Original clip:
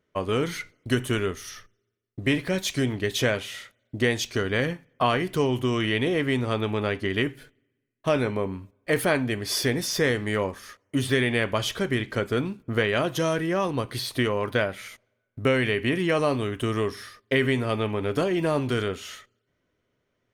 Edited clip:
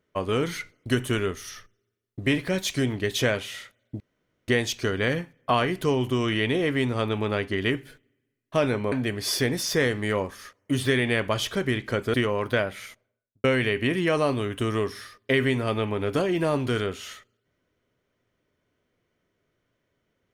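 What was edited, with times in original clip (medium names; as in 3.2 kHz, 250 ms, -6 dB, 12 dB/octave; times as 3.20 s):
4.00 s: insert room tone 0.48 s
8.44–9.16 s: delete
12.38–14.16 s: delete
14.87–15.46 s: studio fade out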